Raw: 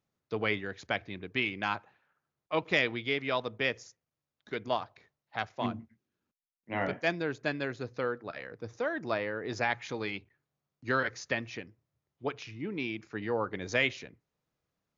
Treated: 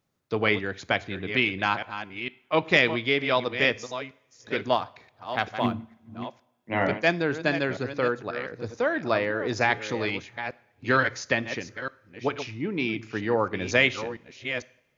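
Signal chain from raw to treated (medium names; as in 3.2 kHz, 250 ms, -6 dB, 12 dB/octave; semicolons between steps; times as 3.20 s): chunks repeated in reverse 457 ms, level -10 dB; 4.73–5.73 s: short-mantissa float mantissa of 6-bit; two-slope reverb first 0.57 s, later 3.1 s, from -26 dB, DRR 18 dB; trim +7 dB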